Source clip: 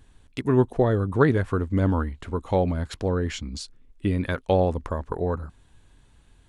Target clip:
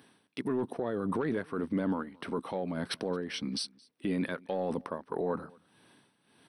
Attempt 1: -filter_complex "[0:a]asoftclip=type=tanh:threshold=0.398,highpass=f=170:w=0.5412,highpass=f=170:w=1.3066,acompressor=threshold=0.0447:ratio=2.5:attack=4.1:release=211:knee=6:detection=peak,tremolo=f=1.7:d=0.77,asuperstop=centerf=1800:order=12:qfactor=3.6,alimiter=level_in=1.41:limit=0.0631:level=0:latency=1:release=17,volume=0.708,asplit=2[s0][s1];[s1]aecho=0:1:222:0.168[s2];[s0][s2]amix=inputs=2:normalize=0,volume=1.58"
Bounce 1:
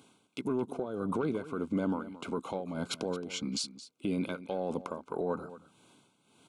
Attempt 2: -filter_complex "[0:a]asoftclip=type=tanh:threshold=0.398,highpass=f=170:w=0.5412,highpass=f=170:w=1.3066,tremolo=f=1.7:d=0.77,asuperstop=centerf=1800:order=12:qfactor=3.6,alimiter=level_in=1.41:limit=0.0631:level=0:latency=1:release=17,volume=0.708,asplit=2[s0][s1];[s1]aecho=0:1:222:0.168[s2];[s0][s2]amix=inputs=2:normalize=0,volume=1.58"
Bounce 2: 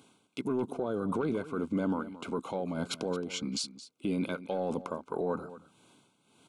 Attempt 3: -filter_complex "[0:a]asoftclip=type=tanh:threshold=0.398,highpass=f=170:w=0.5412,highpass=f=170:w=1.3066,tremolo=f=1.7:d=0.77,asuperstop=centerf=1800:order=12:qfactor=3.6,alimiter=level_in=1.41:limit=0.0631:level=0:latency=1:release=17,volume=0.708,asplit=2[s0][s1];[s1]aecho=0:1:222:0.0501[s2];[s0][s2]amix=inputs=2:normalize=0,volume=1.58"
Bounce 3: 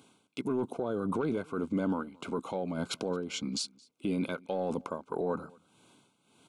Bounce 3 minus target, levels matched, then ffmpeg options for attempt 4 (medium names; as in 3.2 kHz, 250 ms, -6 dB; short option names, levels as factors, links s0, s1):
8 kHz band +4.5 dB
-filter_complex "[0:a]asoftclip=type=tanh:threshold=0.398,highpass=f=170:w=0.5412,highpass=f=170:w=1.3066,tremolo=f=1.7:d=0.77,asuperstop=centerf=7000:order=12:qfactor=3.6,alimiter=level_in=1.41:limit=0.0631:level=0:latency=1:release=17,volume=0.708,asplit=2[s0][s1];[s1]aecho=0:1:222:0.0501[s2];[s0][s2]amix=inputs=2:normalize=0,volume=1.58"